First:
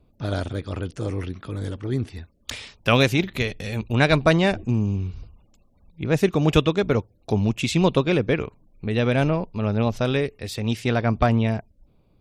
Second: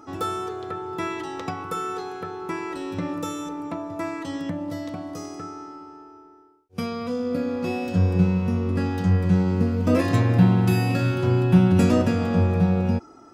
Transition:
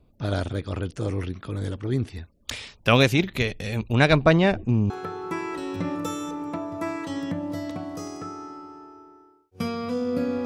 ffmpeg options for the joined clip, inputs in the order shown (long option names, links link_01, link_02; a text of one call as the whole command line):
ffmpeg -i cue0.wav -i cue1.wav -filter_complex "[0:a]asettb=1/sr,asplit=3[link_01][link_02][link_03];[link_01]atrim=end=4.134[link_04];[link_02]atrim=start=4.13:end=4.9,asetpts=PTS-STARTPTS,afade=type=in:duration=0.004:curve=qsin,afade=type=out:start_time=0.766:duration=0.004:curve=qsin,aemphasis=mode=reproduction:type=50fm[link_05];[link_03]atrim=start=4.896[link_06];[link_04][link_05]acrossfade=duration=0.004:curve1=hsin:curve2=qsin[link_07];[link_07][link_06]acrossfade=duration=0.004:curve1=qsin:curve2=hsin,apad=whole_dur=10.45,atrim=end=10.45,atrim=end=4.902[link_08];[1:a]atrim=start=2.078:end=7.63[link_09];[link_08][link_09]acrossfade=duration=0.004:curve1=hsin:curve2=hsin" out.wav